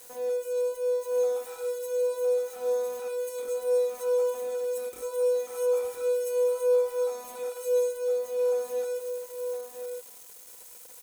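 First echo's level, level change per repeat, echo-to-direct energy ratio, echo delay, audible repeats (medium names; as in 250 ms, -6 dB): -6.5 dB, no regular repeats, -6.5 dB, 1011 ms, 1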